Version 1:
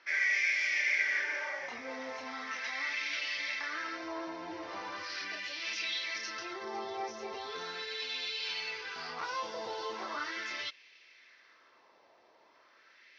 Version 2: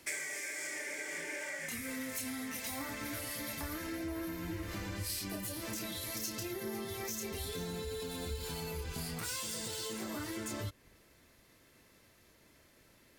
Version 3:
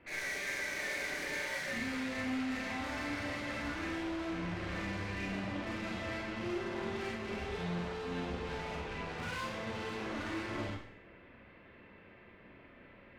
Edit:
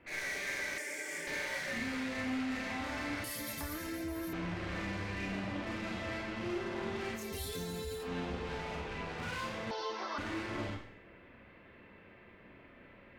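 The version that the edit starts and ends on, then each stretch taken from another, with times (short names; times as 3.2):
3
0.78–1.27 from 2
3.24–4.33 from 2
7.22–8.01 from 2, crossfade 0.16 s
9.71–10.18 from 1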